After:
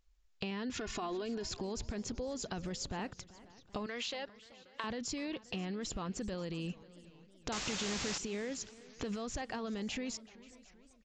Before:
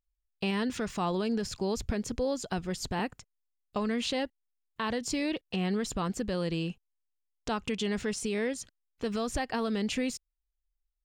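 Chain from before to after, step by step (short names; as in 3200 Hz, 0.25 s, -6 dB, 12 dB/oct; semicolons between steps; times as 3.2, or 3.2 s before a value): 0.77–1.49 comb 2.8 ms, depth 67%; 3.86–4.84 HPF 570 Hz 12 dB/oct; limiter -30 dBFS, peak gain reduction 11 dB; compressor 3:1, threshold -54 dBFS, peak gain reduction 15 dB; 7.52–8.18 requantised 8-bit, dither triangular; on a send: echo 0.533 s -22 dB; on the sum: downsampling 16000 Hz; warbling echo 0.383 s, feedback 55%, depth 155 cents, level -20 dB; gain +12.5 dB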